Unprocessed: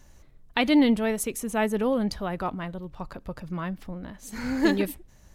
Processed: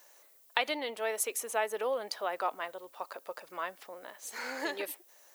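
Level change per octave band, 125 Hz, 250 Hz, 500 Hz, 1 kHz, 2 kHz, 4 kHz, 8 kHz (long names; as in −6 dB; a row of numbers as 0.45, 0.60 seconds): below −30 dB, −23.5 dB, −6.0 dB, −3.0 dB, −4.0 dB, −4.5 dB, −0.5 dB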